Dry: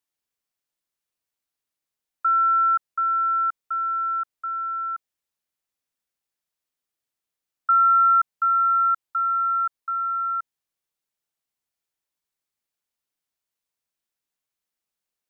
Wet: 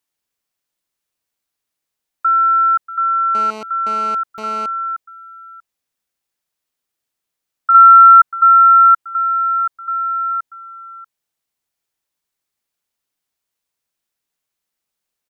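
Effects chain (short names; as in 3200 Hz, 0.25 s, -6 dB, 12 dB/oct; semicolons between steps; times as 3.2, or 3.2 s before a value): echo 0.638 s -15.5 dB; 3.35–4.66 GSM buzz -36 dBFS; 7.74–9.01 dynamic EQ 1400 Hz, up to +6 dB, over -29 dBFS, Q 2.9; gain +6 dB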